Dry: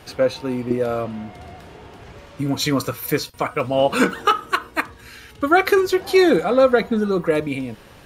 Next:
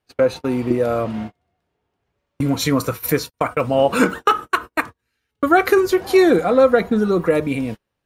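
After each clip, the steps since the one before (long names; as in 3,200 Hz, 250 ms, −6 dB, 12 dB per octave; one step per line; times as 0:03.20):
in parallel at 0 dB: downward compressor 8 to 1, threshold −26 dBFS, peak gain reduction 16 dB
on the sum: noise gate −25 dBFS, range −39 dB
dynamic equaliser 3,600 Hz, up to −5 dB, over −34 dBFS, Q 0.96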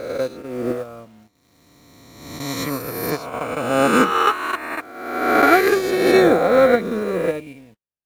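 peak hold with a rise ahead of every peak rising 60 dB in 2.90 s
in parallel at −3 dB: bit reduction 5 bits
on the sum: expander for the loud parts 2.5 to 1, over −17 dBFS
level −6.5 dB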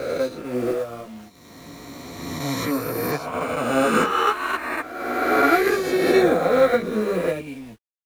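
mu-law and A-law mismatch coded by mu
multi-voice chorus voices 2, 0.88 Hz, delay 15 ms, depth 3.7 ms
multiband upward and downward compressor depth 40%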